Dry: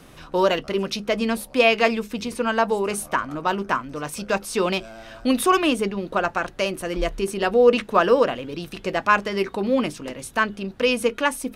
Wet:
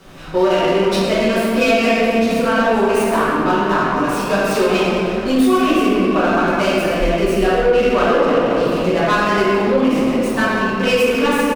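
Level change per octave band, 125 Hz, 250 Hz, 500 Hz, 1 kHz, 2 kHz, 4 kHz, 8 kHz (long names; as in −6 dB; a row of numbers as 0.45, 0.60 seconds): +9.5, +9.0, +6.5, +5.5, +5.5, +4.5, +2.0 decibels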